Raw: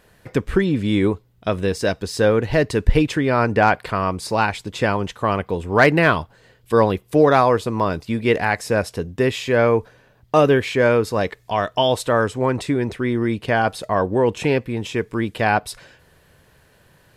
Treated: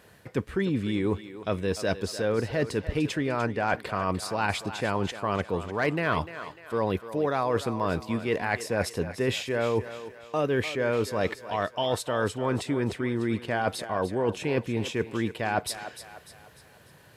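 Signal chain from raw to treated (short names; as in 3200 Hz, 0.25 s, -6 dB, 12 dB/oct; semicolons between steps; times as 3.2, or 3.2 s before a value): HPF 73 Hz; reverse; compressor, threshold -24 dBFS, peak gain reduction 14.5 dB; reverse; thinning echo 0.298 s, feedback 46%, high-pass 360 Hz, level -11.5 dB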